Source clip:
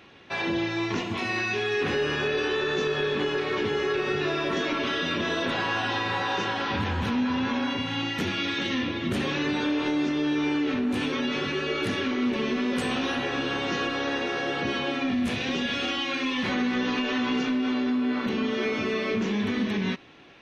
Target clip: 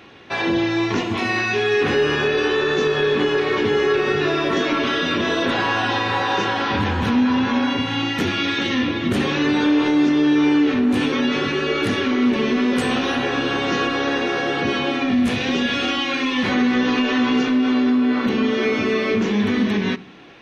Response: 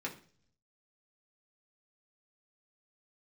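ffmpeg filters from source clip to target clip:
-filter_complex "[0:a]asplit=2[a][b];[1:a]atrim=start_sample=2205,lowpass=2.1k[c];[b][c]afir=irnorm=-1:irlink=0,volume=-12.5dB[d];[a][d]amix=inputs=2:normalize=0,volume=6dB"

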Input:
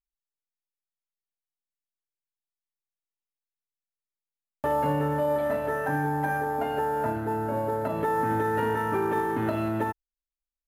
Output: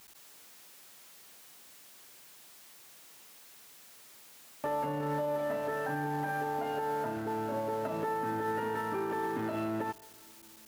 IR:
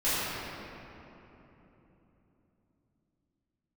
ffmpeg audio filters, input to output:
-filter_complex "[0:a]aeval=exprs='val(0)+0.5*0.0141*sgn(val(0))':c=same,highpass=140,alimiter=limit=-19.5dB:level=0:latency=1:release=76,asplit=2[a][b];[1:a]atrim=start_sample=2205,adelay=129[c];[b][c]afir=irnorm=-1:irlink=0,volume=-36.5dB[d];[a][d]amix=inputs=2:normalize=0,volume=-6dB"

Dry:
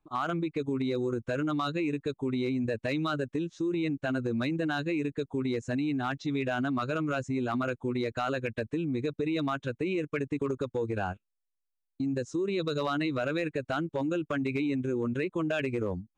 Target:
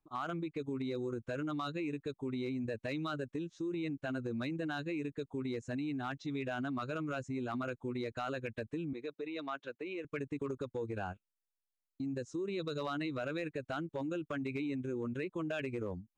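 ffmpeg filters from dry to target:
-filter_complex "[0:a]asettb=1/sr,asplit=3[a][b][c];[a]atrim=end=8.934[d];[b]atrim=start=8.93:end=10.05,asetpts=PTS-STARTPTS,afade=t=in:d=0.004:c=qsin,afade=t=out:st=1.116:d=0.004:c=qsin,highpass=380,lowpass=4.8k[e];[c]atrim=start=10.046[f];[d][e]acrossfade=d=0.004:c1=hsin:c2=qsin[g];[g][f]acrossfade=d=0.004:c1=qsin:c2=hsin,volume=-7.5dB"

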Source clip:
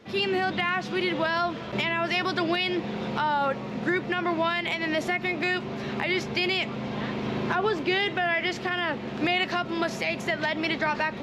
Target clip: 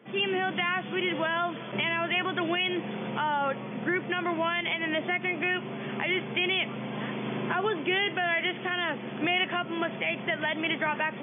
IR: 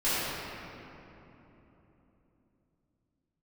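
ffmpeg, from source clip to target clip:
-af "afftfilt=real='re*between(b*sr/4096,120,3500)':imag='im*between(b*sr/4096,120,3500)':win_size=4096:overlap=0.75,adynamicequalizer=threshold=0.0126:dfrequency=2000:dqfactor=0.7:tfrequency=2000:tqfactor=0.7:attack=5:release=100:ratio=0.375:range=2:mode=boostabove:tftype=highshelf,volume=-3dB"

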